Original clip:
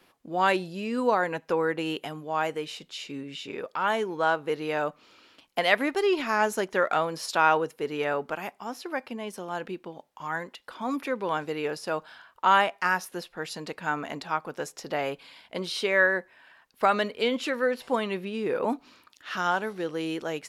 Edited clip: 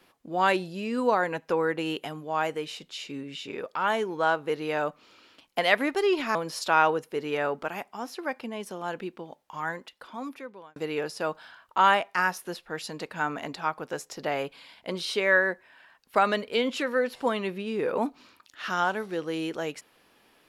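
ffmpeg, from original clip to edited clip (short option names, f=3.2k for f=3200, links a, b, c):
-filter_complex "[0:a]asplit=3[a][b][c];[a]atrim=end=6.352[d];[b]atrim=start=7.018:end=11.43,asetpts=PTS-STARTPTS,afade=t=out:st=3.292:d=1.12[e];[c]atrim=start=11.43,asetpts=PTS-STARTPTS,afade=t=in:d=0.004:c=hsin[f];[e][f]concat=n=2:v=0:a=1[g];[d][g]acrossfade=d=0.004:c1=hsin:c2=hsin"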